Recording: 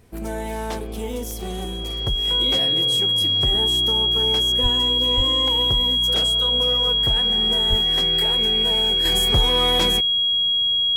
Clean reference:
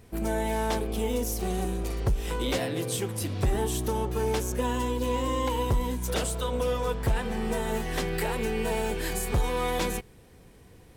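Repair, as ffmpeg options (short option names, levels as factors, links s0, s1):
-filter_complex "[0:a]adeclick=t=4,bandreject=f=3300:w=30,asplit=3[s0][s1][s2];[s0]afade=t=out:st=4.62:d=0.02[s3];[s1]highpass=f=140:w=0.5412,highpass=f=140:w=1.3066,afade=t=in:st=4.62:d=0.02,afade=t=out:st=4.74:d=0.02[s4];[s2]afade=t=in:st=4.74:d=0.02[s5];[s3][s4][s5]amix=inputs=3:normalize=0,asplit=3[s6][s7][s8];[s6]afade=t=out:st=5.16:d=0.02[s9];[s7]highpass=f=140:w=0.5412,highpass=f=140:w=1.3066,afade=t=in:st=5.16:d=0.02,afade=t=out:st=5.28:d=0.02[s10];[s8]afade=t=in:st=5.28:d=0.02[s11];[s9][s10][s11]amix=inputs=3:normalize=0,asplit=3[s12][s13][s14];[s12]afade=t=out:st=7.69:d=0.02[s15];[s13]highpass=f=140:w=0.5412,highpass=f=140:w=1.3066,afade=t=in:st=7.69:d=0.02,afade=t=out:st=7.81:d=0.02[s16];[s14]afade=t=in:st=7.81:d=0.02[s17];[s15][s16][s17]amix=inputs=3:normalize=0,asetnsamples=n=441:p=0,asendcmd='9.05 volume volume -5.5dB',volume=1"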